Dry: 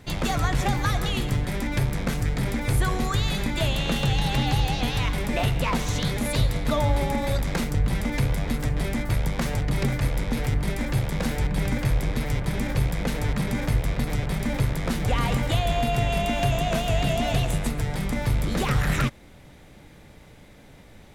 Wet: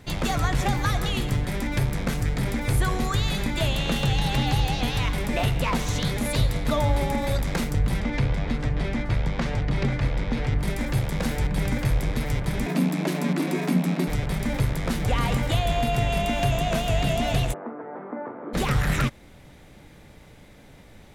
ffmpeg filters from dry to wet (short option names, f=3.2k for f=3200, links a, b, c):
-filter_complex "[0:a]asettb=1/sr,asplit=3[a][b][c];[a]atrim=end=8.004[d];[b]atrim=start=8:end=10.59,asetpts=PTS-STARTPTS,afade=t=in:d=0.004:c=qsin,afade=t=out:st=2.586:d=0.004:c=qsin,lowpass=4.6k[e];[c]atrim=start=10.586[f];[d][e]acrossfade=d=0.004:c1=hsin:c2=qsin[g];[g][f]acrossfade=d=0.004:c1=qsin:c2=hsin,asettb=1/sr,asplit=3[h][i][j];[h]atrim=end=12.664[k];[i]atrim=start=12.66:end=14.08,asetpts=PTS-STARTPTS,afade=t=in:d=0.004:c=qsin,afade=t=out:st=1.416:d=0.004:c=qsin,afreqshift=130[l];[j]atrim=start=14.076[m];[k][l]acrossfade=d=0.004:c1=hsin:c2=qsin[n];[n][m]acrossfade=d=0.004:c1=qsin:c2=hsin,asplit=3[o][p][q];[o]afade=t=out:st=17.52:d=0.02[r];[p]asuperpass=centerf=610:order=8:qfactor=0.53,afade=t=in:st=17.52:d=0.02,afade=t=out:st=18.53:d=0.02[s];[q]afade=t=in:st=18.53:d=0.02[t];[r][s][t]amix=inputs=3:normalize=0"